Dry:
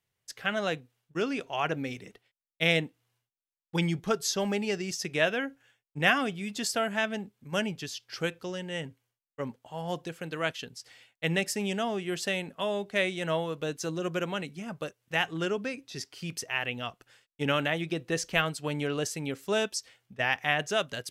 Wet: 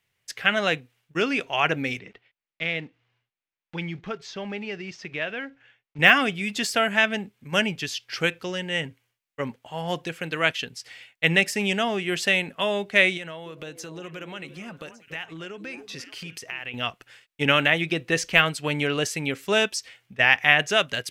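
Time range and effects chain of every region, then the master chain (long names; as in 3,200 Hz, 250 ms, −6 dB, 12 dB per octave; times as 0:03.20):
0:01.99–0:05.99: one scale factor per block 5 bits + downward compressor 1.5 to 1, threshold −50 dBFS + high-frequency loss of the air 180 metres
0:13.17–0:16.74: downward compressor 5 to 1, threshold −41 dBFS + echo through a band-pass that steps 289 ms, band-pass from 350 Hz, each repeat 1.4 octaves, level −7 dB
whole clip: de-essing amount 60%; parametric band 2,300 Hz +8 dB 1.2 octaves; level +4.5 dB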